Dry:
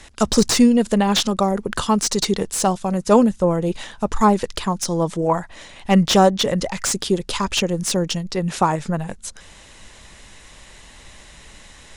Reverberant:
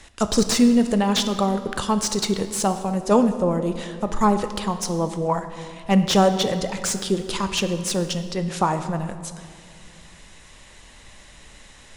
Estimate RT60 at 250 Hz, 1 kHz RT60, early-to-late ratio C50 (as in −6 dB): 2.8 s, 2.0 s, 10.0 dB